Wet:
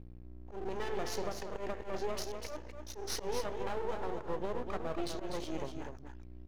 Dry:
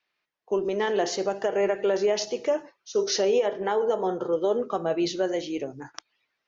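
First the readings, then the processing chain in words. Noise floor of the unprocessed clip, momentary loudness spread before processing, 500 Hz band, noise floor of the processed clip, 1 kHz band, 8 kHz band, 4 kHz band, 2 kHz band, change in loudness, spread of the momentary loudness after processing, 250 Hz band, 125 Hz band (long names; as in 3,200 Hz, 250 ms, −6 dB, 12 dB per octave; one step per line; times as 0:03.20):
−80 dBFS, 7 LU, −15.0 dB, −49 dBFS, −9.5 dB, can't be measured, −11.5 dB, −11.0 dB, −13.5 dB, 10 LU, −12.0 dB, −3.5 dB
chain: downward compressor 3 to 1, threshold −28 dBFS, peak gain reduction 7.5 dB
mains hum 60 Hz, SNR 12 dB
half-wave rectification
volume swells 101 ms
on a send: single-tap delay 247 ms −6.5 dB
on the sum: level −3 dB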